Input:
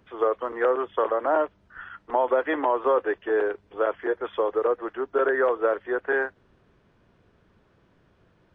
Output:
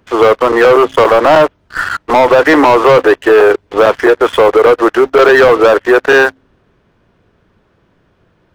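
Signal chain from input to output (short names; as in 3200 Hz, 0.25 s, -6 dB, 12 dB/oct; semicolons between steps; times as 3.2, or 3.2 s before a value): de-hum 66.24 Hz, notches 4; sample leveller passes 3; maximiser +14.5 dB; gain -1 dB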